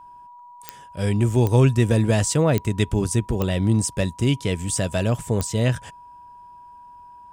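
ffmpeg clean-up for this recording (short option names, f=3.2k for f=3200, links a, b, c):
-af "adeclick=t=4,bandreject=f=970:w=30"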